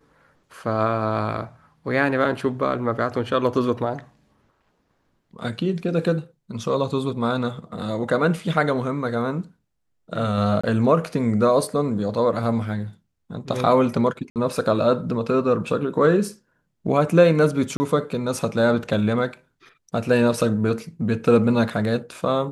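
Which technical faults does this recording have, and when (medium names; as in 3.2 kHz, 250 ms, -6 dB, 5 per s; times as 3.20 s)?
10.61–10.63 s: dropout 25 ms
14.30–14.36 s: dropout 58 ms
17.77–17.80 s: dropout 30 ms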